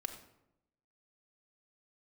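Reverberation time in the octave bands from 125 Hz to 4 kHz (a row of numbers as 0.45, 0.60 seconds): 0.95, 1.0, 0.90, 0.80, 0.65, 0.50 seconds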